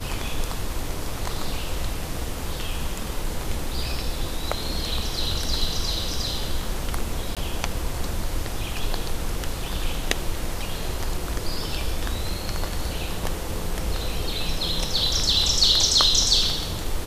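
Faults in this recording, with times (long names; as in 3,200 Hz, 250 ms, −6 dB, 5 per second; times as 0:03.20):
0:07.35–0:07.37: drop-out 17 ms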